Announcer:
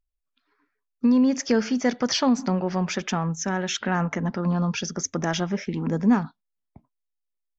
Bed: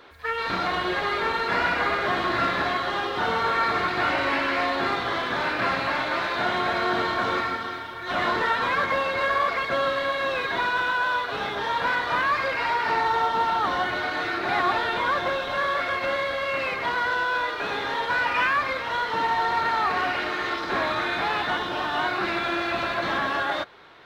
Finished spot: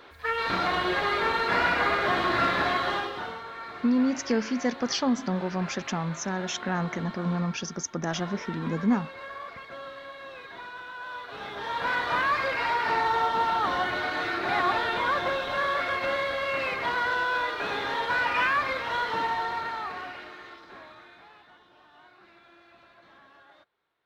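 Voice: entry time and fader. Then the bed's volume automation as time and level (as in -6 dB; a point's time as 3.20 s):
2.80 s, -4.5 dB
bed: 2.92 s -0.5 dB
3.45 s -16.5 dB
10.89 s -16.5 dB
12.00 s -2 dB
19.09 s -2 dB
21.51 s -29.5 dB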